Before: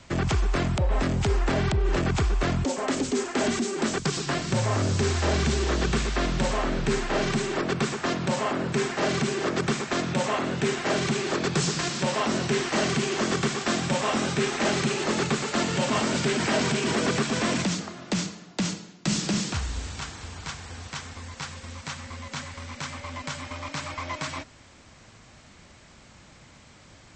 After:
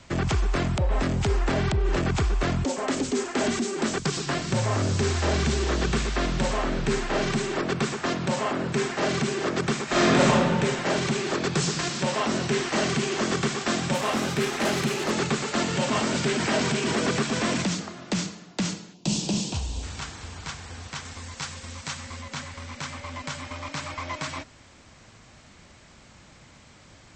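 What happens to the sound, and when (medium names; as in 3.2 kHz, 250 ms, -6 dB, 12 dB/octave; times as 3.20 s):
9.84–10.25 s: reverb throw, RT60 2 s, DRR -8.5 dB
13.94–15.11 s: self-modulated delay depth 0.057 ms
18.94–19.83 s: high-order bell 1.6 kHz -13 dB 1.1 oct
21.05–22.22 s: treble shelf 4.1 kHz +6 dB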